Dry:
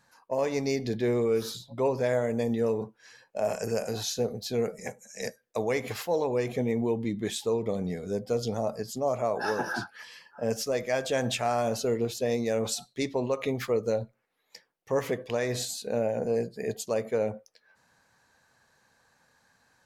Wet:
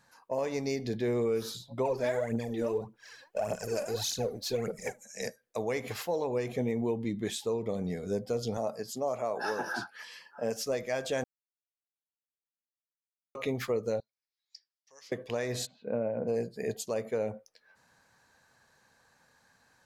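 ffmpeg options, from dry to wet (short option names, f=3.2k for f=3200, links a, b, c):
-filter_complex "[0:a]asplit=3[a][b][c];[a]afade=t=out:st=1.84:d=0.02[d];[b]aphaser=in_gain=1:out_gain=1:delay=3.7:decay=0.68:speed=1.7:type=triangular,afade=t=in:st=1.84:d=0.02,afade=t=out:st=5.02:d=0.02[e];[c]afade=t=in:st=5.02:d=0.02[f];[d][e][f]amix=inputs=3:normalize=0,asettb=1/sr,asplit=3[g][h][i];[g]atrim=end=8.574[j];[h]atrim=start=8.57:end=10.63,asetpts=PTS-STARTPTS,afade=t=in:d=0.004:c=qsin,afade=t=out:st=2.056:d=0.004:c=qsin,highpass=f=240:p=1[k];[i]atrim=start=10.626[l];[j][k]acrossfade=d=0.004:c1=hsin:c2=qsin[m];[m][l]acrossfade=d=0.004:c1=qsin:c2=hsin,asettb=1/sr,asplit=3[n][o][p];[n]atrim=end=14.004[q];[o]atrim=start=14:end=15.12,asetpts=PTS-STARTPTS,afade=t=in:d=0.004:c=qsin,afade=t=out:st=1.116:d=0.004:c=qsin,bandpass=f=5k:t=q:w=4.8[r];[p]atrim=start=15.116[s];[q][r]acrossfade=d=0.004:c1=hsin:c2=qsin[t];[t][s]acrossfade=d=0.004:c1=qsin:c2=hsin,asplit=3[u][v][w];[u]afade=t=out:st=15.65:d=0.02[x];[v]highpass=110,equalizer=f=400:t=q:w=4:g=-5,equalizer=f=780:t=q:w=4:g=-7,equalizer=f=1.8k:t=q:w=4:g=-9,lowpass=f=2.1k:w=0.5412,lowpass=f=2.1k:w=1.3066,afade=t=in:st=15.65:d=0.02,afade=t=out:st=16.27:d=0.02[y];[w]afade=t=in:st=16.27:d=0.02[z];[x][y][z]amix=inputs=3:normalize=0,asplit=3[aa][ab][ac];[aa]atrim=end=11.24,asetpts=PTS-STARTPTS,afade=t=out:st=11.236:d=0.004:c=hsin[ad];[ab]atrim=start=11.24:end=13.35,asetpts=PTS-STARTPTS,volume=0[ae];[ac]atrim=start=13.35,asetpts=PTS-STARTPTS,afade=t=in:d=0.004:c=hsin[af];[ad][ae][af]concat=n=3:v=0:a=1,alimiter=limit=-21.5dB:level=0:latency=1:release=488"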